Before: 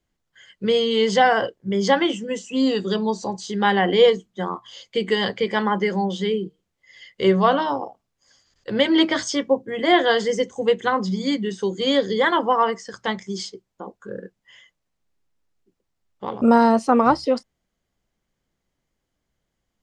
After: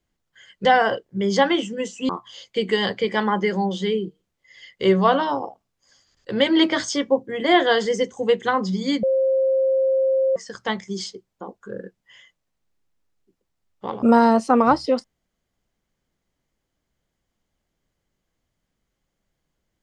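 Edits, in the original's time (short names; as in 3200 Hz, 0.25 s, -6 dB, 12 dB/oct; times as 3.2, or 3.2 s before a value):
0.65–1.16 cut
2.6–4.48 cut
11.42–12.75 bleep 531 Hz -16 dBFS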